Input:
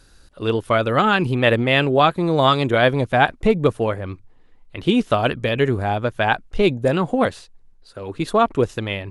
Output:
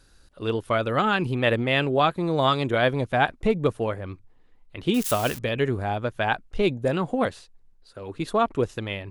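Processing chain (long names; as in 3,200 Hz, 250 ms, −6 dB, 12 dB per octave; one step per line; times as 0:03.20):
0:04.94–0:05.39: spike at every zero crossing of −16 dBFS
level −5.5 dB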